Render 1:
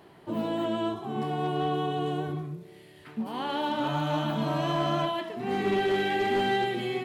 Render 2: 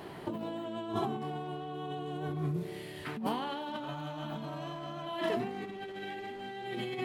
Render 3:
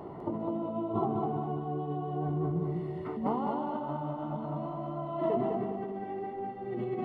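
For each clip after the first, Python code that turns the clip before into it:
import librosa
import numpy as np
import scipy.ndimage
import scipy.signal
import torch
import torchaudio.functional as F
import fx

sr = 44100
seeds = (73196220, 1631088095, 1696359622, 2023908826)

y1 = fx.over_compress(x, sr, threshold_db=-38.0, ratio=-1.0)
y2 = scipy.signal.savgol_filter(y1, 65, 4, mode='constant')
y2 = fx.echo_feedback(y2, sr, ms=203, feedback_pct=41, wet_db=-4.0)
y2 = F.gain(torch.from_numpy(y2), 3.0).numpy()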